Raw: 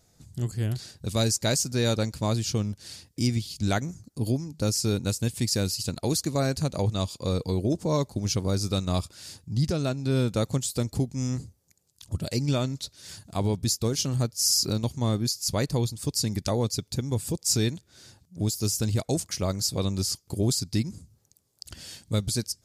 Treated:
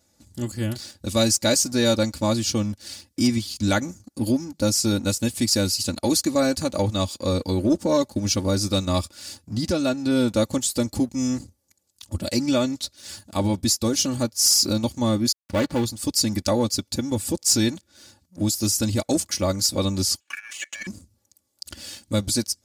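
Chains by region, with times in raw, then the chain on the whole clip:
15.32–15.85 switching dead time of 0.23 ms + high shelf 5300 Hz -8 dB
20.2–20.87 three-band isolator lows -24 dB, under 260 Hz, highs -23 dB, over 6400 Hz + negative-ratio compressor -36 dBFS, ratio -0.5 + ring modulator 2000 Hz
whole clip: HPF 76 Hz 12 dB/oct; comb 3.5 ms, depth 83%; sample leveller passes 1

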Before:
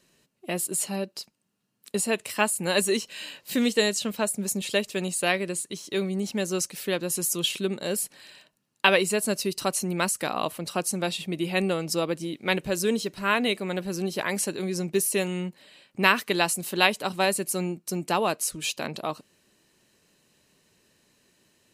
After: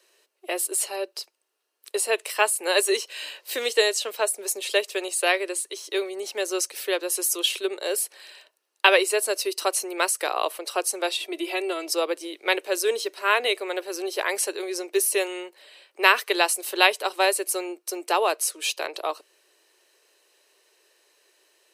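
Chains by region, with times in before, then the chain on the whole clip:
11.15–11.91 compressor 2.5:1, threshold -27 dBFS + comb 3 ms, depth 73%
whole clip: steep high-pass 360 Hz 48 dB/oct; notch 7100 Hz, Q 12; gain +3 dB

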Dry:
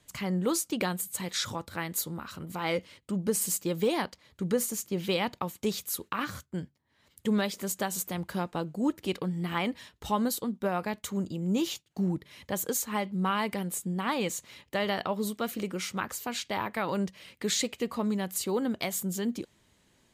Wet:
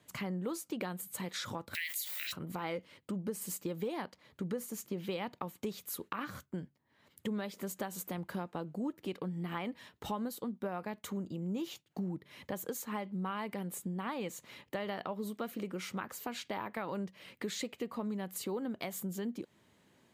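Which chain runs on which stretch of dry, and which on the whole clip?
1.73–2.32 steep high-pass 1900 Hz 72 dB/oct + added noise blue -63 dBFS + fast leveller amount 70%
whole clip: HPF 120 Hz; bell 7100 Hz -8 dB 2.4 oct; compressor 3:1, threshold -39 dBFS; gain +1.5 dB

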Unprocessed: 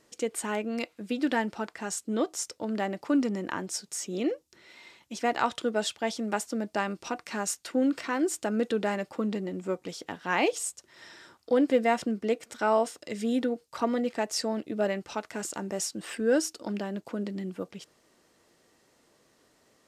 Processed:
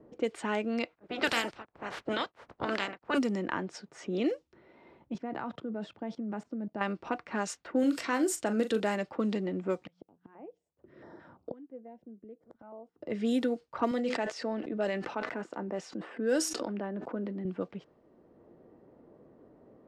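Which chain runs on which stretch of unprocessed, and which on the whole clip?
0.94–3.17 spectral limiter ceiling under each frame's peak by 29 dB + beating tremolo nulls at 1.5 Hz
5.14–6.81 HPF 150 Hz + tone controls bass +15 dB, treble +2 dB + level quantiser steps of 19 dB
7.79–8.8 high shelf 6100 Hz +7 dB + doubler 40 ms -11 dB
9.84–13.02 notches 60/120/180 Hz + flipped gate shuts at -29 dBFS, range -27 dB + stepped notch 5.9 Hz 390–5700 Hz
13.91–17.45 HPF 170 Hz + resonator 250 Hz, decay 0.19 s, mix 40% + sustainer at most 41 dB/s
whole clip: low-pass opened by the level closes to 530 Hz, open at -23.5 dBFS; three-band squash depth 40%

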